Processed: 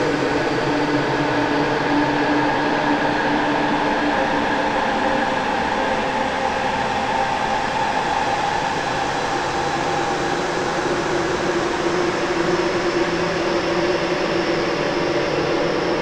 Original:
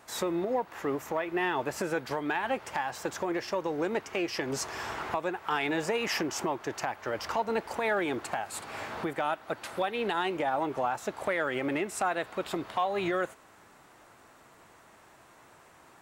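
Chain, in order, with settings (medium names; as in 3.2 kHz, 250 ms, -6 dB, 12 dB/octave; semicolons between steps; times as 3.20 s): fuzz box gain 42 dB, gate -49 dBFS; Paulstretch 10×, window 1.00 s, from 2.02 s; distance through air 150 m; trim -3 dB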